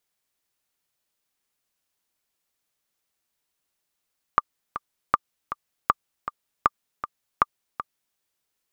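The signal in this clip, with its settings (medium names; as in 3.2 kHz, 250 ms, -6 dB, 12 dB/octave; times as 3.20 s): metronome 158 bpm, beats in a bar 2, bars 5, 1.19 kHz, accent 12 dB -3.5 dBFS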